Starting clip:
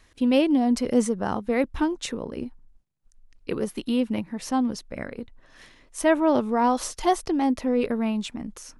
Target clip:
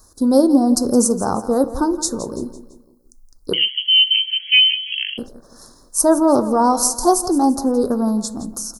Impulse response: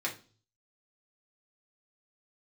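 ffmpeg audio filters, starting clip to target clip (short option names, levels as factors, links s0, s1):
-filter_complex "[0:a]asuperstop=centerf=2500:order=8:qfactor=0.8,aecho=1:1:168|336|504|672:0.188|0.0829|0.0365|0.016,asettb=1/sr,asplit=3[s0][s1][s2];[s0]atrim=end=3.534[s3];[s1]atrim=start=3.53:end=5.18,asetpts=PTS-STARTPTS,afade=t=in:d=0.004:c=qsin,afade=t=out:st=1.646:d=0.004:c=qsin,lowpass=f=2800:t=q:w=0.5098,lowpass=f=2800:t=q:w=0.6013,lowpass=f=2800:t=q:w=0.9,lowpass=f=2800:t=q:w=2.563,afreqshift=-3300[s4];[s2]atrim=start=5.176[s5];[s3][s4]acrossfade=d=0.004:c1=hsin:c2=qsin[s6];[s6][s5]acrossfade=d=0.004:c1=qsin:c2=hsin,aemphasis=mode=production:type=50fm,asplit=2[s7][s8];[1:a]atrim=start_sample=2205,afade=t=out:st=0.2:d=0.01,atrim=end_sample=9261[s9];[s8][s9]afir=irnorm=-1:irlink=0,volume=0.251[s10];[s7][s10]amix=inputs=2:normalize=0,volume=1.88"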